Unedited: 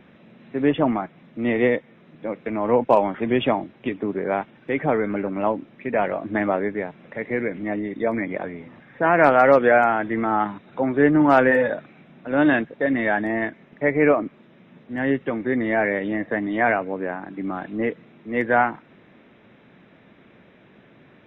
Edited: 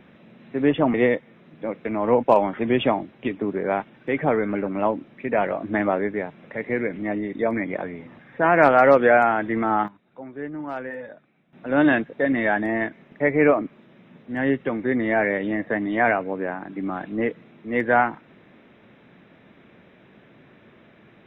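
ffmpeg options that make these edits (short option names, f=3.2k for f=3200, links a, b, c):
-filter_complex "[0:a]asplit=4[a][b][c][d];[a]atrim=end=0.942[e];[b]atrim=start=1.548:end=10.49,asetpts=PTS-STARTPTS,afade=t=out:st=8.782:d=0.16:c=log:silence=0.158489[f];[c]atrim=start=10.49:end=12.14,asetpts=PTS-STARTPTS,volume=-16dB[g];[d]atrim=start=12.14,asetpts=PTS-STARTPTS,afade=t=in:d=0.16:c=log:silence=0.158489[h];[f][g][h]concat=n=3:v=0:a=1[i];[e][i]acrossfade=d=0.004:c1=hsin:c2=hsin"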